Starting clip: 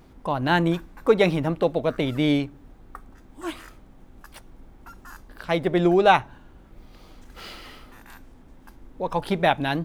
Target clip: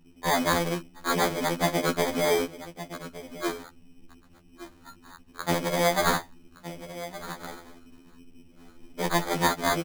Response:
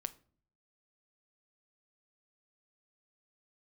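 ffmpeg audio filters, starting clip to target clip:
-filter_complex "[0:a]afftfilt=real='re*lt(hypot(re,im),0.447)':imag='im*lt(hypot(re,im),0.447)':win_size=1024:overlap=0.75,afwtdn=0.00794,asplit=2[s0][s1];[s1]acrusher=bits=4:mix=0:aa=0.000001,volume=0.501[s2];[s0][s2]amix=inputs=2:normalize=0,highshelf=f=3300:g=5.5,aeval=exprs='val(0)+0.00126*(sin(2*PI*50*n/s)+sin(2*PI*2*50*n/s)/2+sin(2*PI*3*50*n/s)/3+sin(2*PI*4*50*n/s)/4+sin(2*PI*5*50*n/s)/5)':c=same,asplit=2[s3][s4];[s4]adelay=1166,volume=0.224,highshelf=f=4000:g=-26.2[s5];[s3][s5]amix=inputs=2:normalize=0,acrossover=split=110[s6][s7];[s7]alimiter=limit=0.376:level=0:latency=1:release=307[s8];[s6][s8]amix=inputs=2:normalize=0,acrusher=samples=16:mix=1:aa=0.000001,equalizer=f=100:t=o:w=1.2:g=-9,afftfilt=real='re*2*eq(mod(b,4),0)':imag='im*2*eq(mod(b,4),0)':win_size=2048:overlap=0.75,volume=1.33"

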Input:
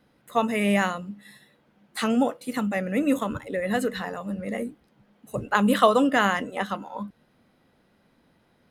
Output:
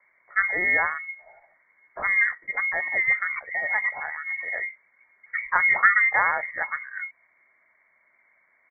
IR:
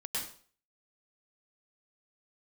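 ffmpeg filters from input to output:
-af "lowpass=f=2300:t=q:w=0.5098,lowpass=f=2300:t=q:w=0.6013,lowpass=f=2300:t=q:w=0.9,lowpass=f=2300:t=q:w=2.563,afreqshift=-2700,asetrate=38170,aresample=44100,atempo=1.15535"

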